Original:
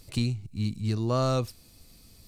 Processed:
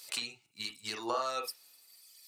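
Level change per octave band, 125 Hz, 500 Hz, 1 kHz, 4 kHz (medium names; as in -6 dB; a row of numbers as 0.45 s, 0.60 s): -34.5 dB, -8.5 dB, -1.5 dB, +1.0 dB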